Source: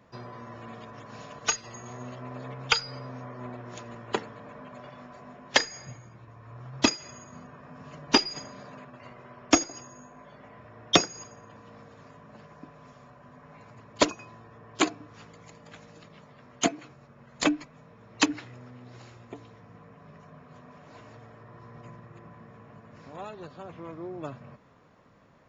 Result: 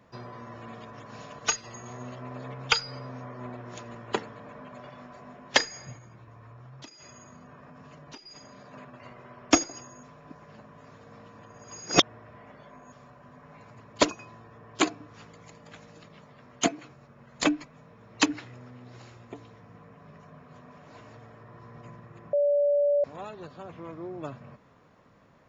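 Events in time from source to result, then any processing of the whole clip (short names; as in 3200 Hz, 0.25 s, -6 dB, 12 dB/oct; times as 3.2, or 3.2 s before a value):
5.98–8.74 compressor, threshold -45 dBFS
10.03–12.92 reverse
22.33–23.04 bleep 577 Hz -20 dBFS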